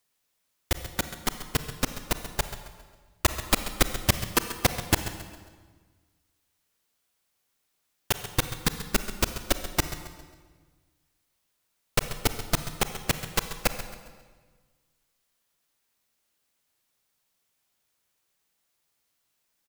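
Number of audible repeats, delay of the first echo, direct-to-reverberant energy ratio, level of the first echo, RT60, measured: 3, 0.135 s, 8.0 dB, -13.5 dB, 1.5 s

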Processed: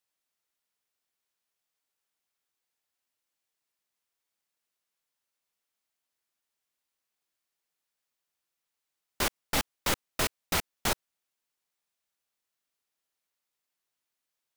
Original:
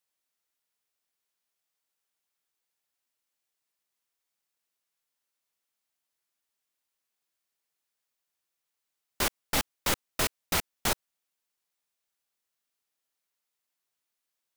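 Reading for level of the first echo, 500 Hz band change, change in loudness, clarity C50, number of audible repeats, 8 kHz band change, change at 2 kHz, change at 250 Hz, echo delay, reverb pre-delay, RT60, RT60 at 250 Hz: none, 0.0 dB, -1.0 dB, none, none, -1.5 dB, 0.0 dB, 0.0 dB, none, none, none, none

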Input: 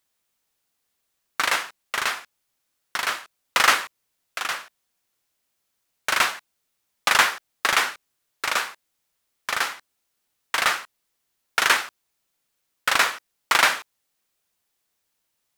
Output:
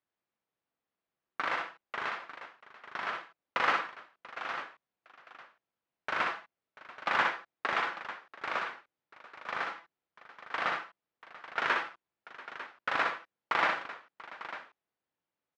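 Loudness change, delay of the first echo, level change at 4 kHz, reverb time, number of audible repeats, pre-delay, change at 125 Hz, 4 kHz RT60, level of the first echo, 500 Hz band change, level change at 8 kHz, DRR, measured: -11.0 dB, 61 ms, -16.5 dB, none, 3, none, n/a, none, -5.5 dB, -5.5 dB, under -25 dB, none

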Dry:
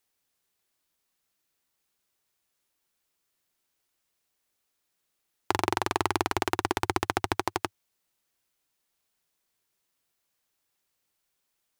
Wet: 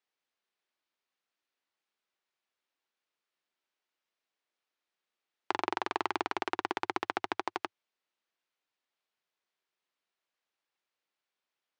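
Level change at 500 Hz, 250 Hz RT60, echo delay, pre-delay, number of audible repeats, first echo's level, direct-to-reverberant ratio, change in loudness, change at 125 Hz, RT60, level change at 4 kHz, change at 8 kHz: -6.5 dB, none, none, none, none, none, none, -5.5 dB, -21.5 dB, none, -7.0 dB, -15.5 dB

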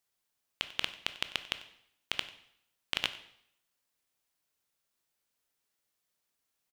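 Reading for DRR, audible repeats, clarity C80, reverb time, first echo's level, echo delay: 10.0 dB, 1, 15.0 dB, 0.70 s, -19.0 dB, 94 ms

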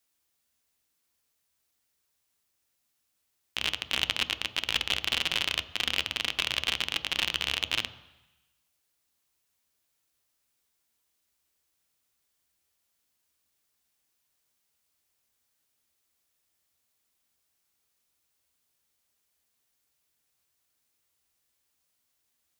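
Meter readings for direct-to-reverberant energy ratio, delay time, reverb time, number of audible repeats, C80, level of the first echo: 11.0 dB, none, 1.0 s, none, 17.0 dB, none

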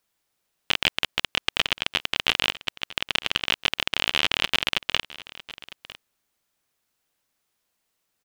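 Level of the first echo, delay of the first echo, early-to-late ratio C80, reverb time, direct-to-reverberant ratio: -18.0 dB, 0.953 s, none, none, none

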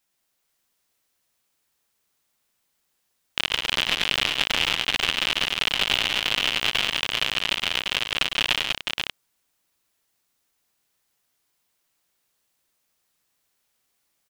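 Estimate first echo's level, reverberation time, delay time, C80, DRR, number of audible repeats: -11.0 dB, none, 0.103 s, none, none, 4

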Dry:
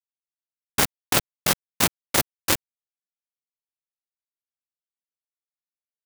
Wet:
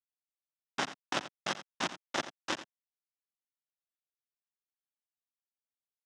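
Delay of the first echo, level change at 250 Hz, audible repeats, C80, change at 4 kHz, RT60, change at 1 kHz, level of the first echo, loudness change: 86 ms, -11.5 dB, 1, none, -11.5 dB, none, -8.0 dB, -13.5 dB, -14.0 dB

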